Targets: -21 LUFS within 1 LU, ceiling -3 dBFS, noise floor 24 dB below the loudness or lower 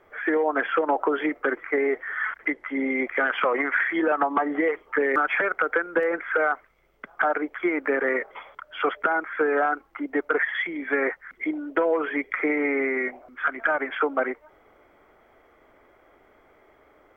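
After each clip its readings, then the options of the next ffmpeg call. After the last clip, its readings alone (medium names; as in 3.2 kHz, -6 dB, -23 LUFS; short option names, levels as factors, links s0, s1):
loudness -25.0 LUFS; peak level -9.5 dBFS; loudness target -21.0 LUFS
-> -af "volume=1.58"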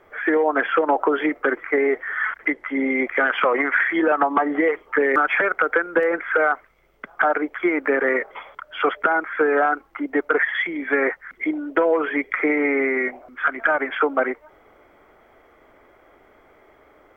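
loudness -21.0 LUFS; peak level -5.5 dBFS; noise floor -55 dBFS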